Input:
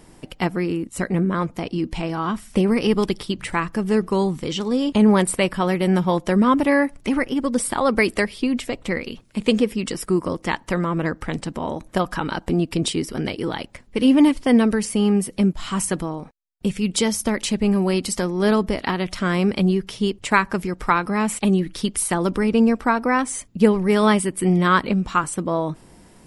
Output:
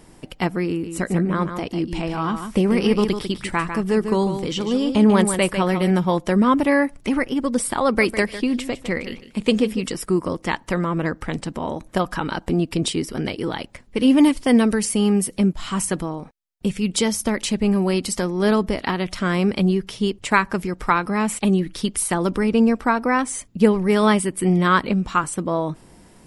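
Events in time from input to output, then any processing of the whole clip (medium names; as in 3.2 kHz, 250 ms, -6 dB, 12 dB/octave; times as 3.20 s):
0.69–5.91 s: delay 148 ms -8 dB
7.85–9.88 s: feedback delay 153 ms, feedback 16%, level -13 dB
14.10–15.38 s: treble shelf 4.9 kHz +6.5 dB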